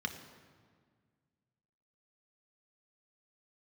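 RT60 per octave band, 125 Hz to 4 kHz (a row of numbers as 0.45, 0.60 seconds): 2.5, 2.3, 1.8, 1.7, 1.5, 1.2 seconds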